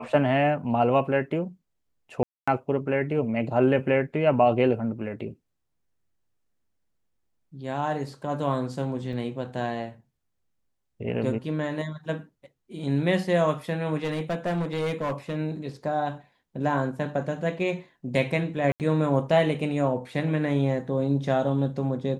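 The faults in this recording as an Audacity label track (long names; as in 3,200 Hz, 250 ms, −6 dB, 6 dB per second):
2.230000	2.480000	drop-out 245 ms
9.130000	9.130000	drop-out 3.1 ms
14.040000	15.370000	clipping −23.5 dBFS
18.720000	18.800000	drop-out 78 ms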